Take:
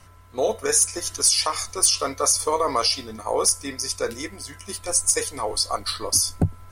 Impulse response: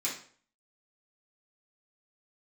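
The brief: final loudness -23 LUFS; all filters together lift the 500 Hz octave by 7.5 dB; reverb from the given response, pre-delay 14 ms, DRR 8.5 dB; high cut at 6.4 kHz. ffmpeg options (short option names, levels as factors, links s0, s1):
-filter_complex "[0:a]lowpass=6400,equalizer=f=500:t=o:g=8.5,asplit=2[s0][s1];[1:a]atrim=start_sample=2205,adelay=14[s2];[s1][s2]afir=irnorm=-1:irlink=0,volume=0.211[s3];[s0][s3]amix=inputs=2:normalize=0,volume=0.794"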